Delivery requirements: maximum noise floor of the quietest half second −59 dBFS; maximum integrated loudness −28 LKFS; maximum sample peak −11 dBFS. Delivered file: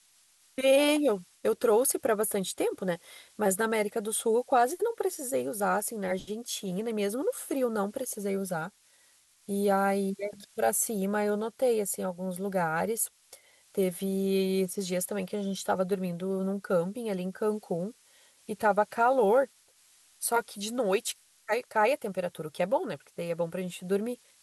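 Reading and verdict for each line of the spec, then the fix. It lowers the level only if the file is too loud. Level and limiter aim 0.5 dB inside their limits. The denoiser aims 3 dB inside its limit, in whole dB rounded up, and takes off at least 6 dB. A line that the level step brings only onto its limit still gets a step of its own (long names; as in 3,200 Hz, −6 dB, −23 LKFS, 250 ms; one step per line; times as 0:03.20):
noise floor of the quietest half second −63 dBFS: in spec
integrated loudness −29.5 LKFS: in spec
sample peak −13.5 dBFS: in spec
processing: no processing needed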